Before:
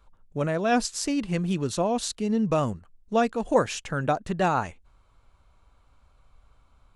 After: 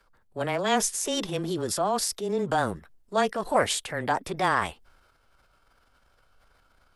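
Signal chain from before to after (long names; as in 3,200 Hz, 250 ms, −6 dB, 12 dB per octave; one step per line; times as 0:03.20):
frequency shifter −14 Hz
transient designer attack −2 dB, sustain +6 dB
formants moved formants +4 semitones
bass and treble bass −8 dB, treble +1 dB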